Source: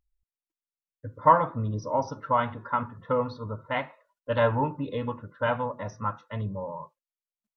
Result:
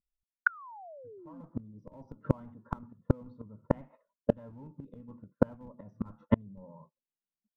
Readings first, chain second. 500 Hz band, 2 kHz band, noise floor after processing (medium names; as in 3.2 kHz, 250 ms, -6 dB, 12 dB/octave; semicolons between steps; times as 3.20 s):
-8.5 dB, -2.0 dB, under -85 dBFS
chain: in parallel at -3 dB: Schmitt trigger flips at -24.5 dBFS; on the sum: painted sound fall, 0.46–1.41 s, 250–1500 Hz -21 dBFS; peaking EQ 210 Hz +11.5 dB 1 oct; level rider gain up to 13.5 dB; gate -29 dBFS, range -26 dB; tilt shelf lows +9.5 dB, about 1.4 kHz; reverse; compression 6:1, threshold -13 dBFS, peak gain reduction 13 dB; reverse; inverted gate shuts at -13 dBFS, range -36 dB; trim +2.5 dB